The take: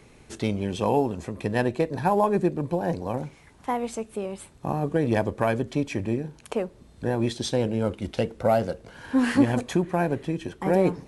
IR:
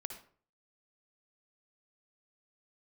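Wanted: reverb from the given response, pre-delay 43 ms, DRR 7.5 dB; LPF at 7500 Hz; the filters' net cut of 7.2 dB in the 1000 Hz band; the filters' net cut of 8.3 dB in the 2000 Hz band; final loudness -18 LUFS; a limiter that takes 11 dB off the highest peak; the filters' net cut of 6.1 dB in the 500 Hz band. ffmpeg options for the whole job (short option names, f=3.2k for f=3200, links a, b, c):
-filter_complex "[0:a]lowpass=7.5k,equalizer=f=500:t=o:g=-6,equalizer=f=1k:t=o:g=-5.5,equalizer=f=2k:t=o:g=-8.5,alimiter=limit=-21dB:level=0:latency=1,asplit=2[a][b];[1:a]atrim=start_sample=2205,adelay=43[c];[b][c]afir=irnorm=-1:irlink=0,volume=-5.5dB[d];[a][d]amix=inputs=2:normalize=0,volume=14dB"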